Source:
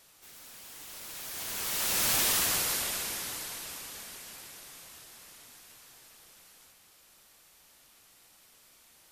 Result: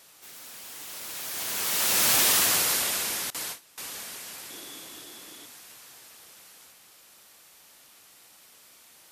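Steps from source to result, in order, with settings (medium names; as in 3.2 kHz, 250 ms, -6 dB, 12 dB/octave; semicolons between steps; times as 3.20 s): high-pass 160 Hz 6 dB/octave; 3.30–3.78 s: gate with hold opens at -27 dBFS; 4.50–5.46 s: small resonant body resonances 310/3400 Hz, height 13 dB, ringing for 25 ms; trim +5.5 dB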